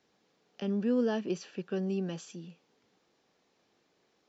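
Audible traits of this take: noise floor -74 dBFS; spectral tilt -6.5 dB/octave

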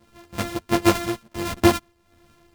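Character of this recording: a buzz of ramps at a fixed pitch in blocks of 128 samples; tremolo triangle 1.4 Hz, depth 75%; a shimmering, thickened sound

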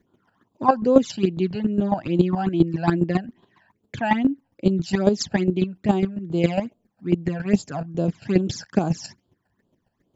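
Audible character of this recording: phasing stages 12, 2.4 Hz, lowest notch 350–2000 Hz; chopped level 7.3 Hz, depth 65%, duty 15%

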